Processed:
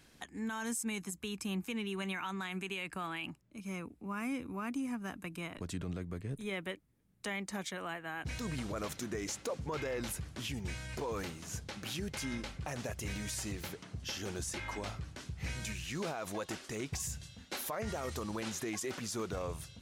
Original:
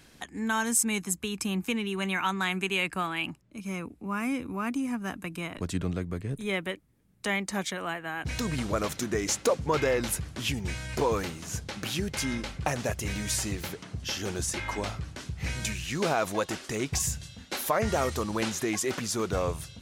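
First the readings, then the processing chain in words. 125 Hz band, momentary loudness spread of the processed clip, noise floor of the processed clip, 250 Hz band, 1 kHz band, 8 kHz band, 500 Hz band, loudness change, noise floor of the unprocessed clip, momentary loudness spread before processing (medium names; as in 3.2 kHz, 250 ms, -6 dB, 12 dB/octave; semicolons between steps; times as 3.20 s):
-8.0 dB, 5 LU, -62 dBFS, -8.0 dB, -10.5 dB, -10.0 dB, -10.5 dB, -9.0 dB, -56 dBFS, 9 LU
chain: peak limiter -22.5 dBFS, peak gain reduction 8.5 dB; trim -6.5 dB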